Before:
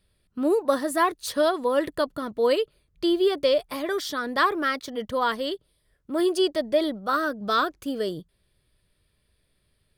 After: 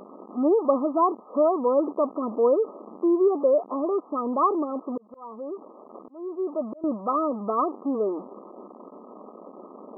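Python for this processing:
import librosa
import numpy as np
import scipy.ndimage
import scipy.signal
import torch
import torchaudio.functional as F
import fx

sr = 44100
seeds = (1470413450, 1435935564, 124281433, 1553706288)

y = x + 0.5 * 10.0 ** (-28.0 / 20.0) * np.sign(x)
y = fx.brickwall_bandpass(y, sr, low_hz=200.0, high_hz=1300.0)
y = fx.auto_swell(y, sr, attack_ms=797.0, at=(4.62, 6.84))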